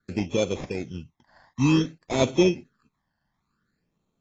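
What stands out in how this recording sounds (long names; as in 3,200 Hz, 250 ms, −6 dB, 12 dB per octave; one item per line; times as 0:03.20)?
aliases and images of a low sample rate 2,900 Hz, jitter 0%
phaser sweep stages 12, 0.55 Hz, lowest notch 400–1,600 Hz
AAC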